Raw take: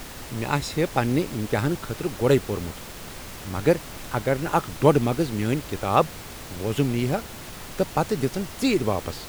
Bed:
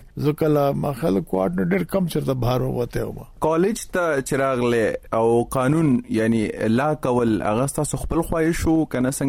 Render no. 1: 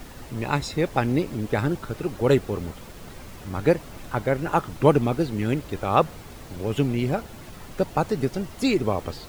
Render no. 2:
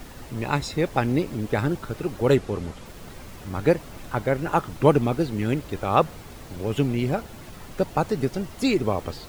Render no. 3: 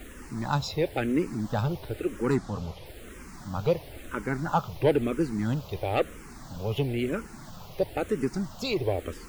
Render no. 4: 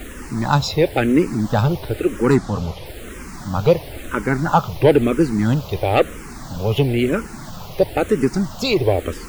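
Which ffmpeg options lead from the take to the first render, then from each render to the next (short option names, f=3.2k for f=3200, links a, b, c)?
-af "afftdn=nr=8:nf=-39"
-filter_complex "[0:a]asettb=1/sr,asplit=3[a][b][c];[a]atrim=end=2.364[d];[b]atrim=start=2.36:end=2.86,asetpts=PTS-STARTPTS,afade=t=in:d=0.004:c=qsin,afade=t=out:st=0.496:d=0.004:c=qsin,lowpass=10k[e];[c]atrim=start=2.856[f];[d][e]acrossfade=d=0.004:c1=hsin:c2=qsin[g];[g][f]acrossfade=d=0.004:c1=qsin:c2=hsin"
-filter_complex "[0:a]asoftclip=type=tanh:threshold=-12.5dB,asplit=2[a][b];[b]afreqshift=-1[c];[a][c]amix=inputs=2:normalize=1"
-af "volume=10.5dB,alimiter=limit=-2dB:level=0:latency=1"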